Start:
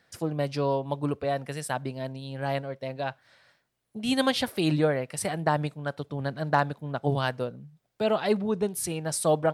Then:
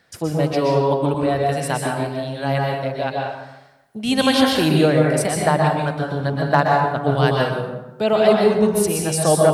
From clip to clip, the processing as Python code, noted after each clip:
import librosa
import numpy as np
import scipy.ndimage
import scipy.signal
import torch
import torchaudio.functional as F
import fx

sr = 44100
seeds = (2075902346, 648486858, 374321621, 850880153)

y = fx.rev_plate(x, sr, seeds[0], rt60_s=0.98, hf_ratio=0.65, predelay_ms=110, drr_db=-1.0)
y = y * librosa.db_to_amplitude(6.0)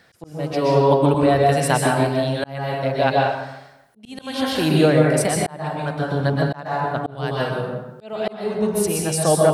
y = fx.rider(x, sr, range_db=10, speed_s=2.0)
y = fx.auto_swell(y, sr, attack_ms=694.0)
y = y * librosa.db_to_amplitude(1.5)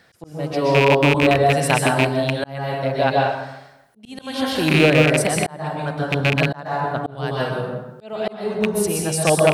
y = fx.rattle_buzz(x, sr, strikes_db=-19.0, level_db=-7.0)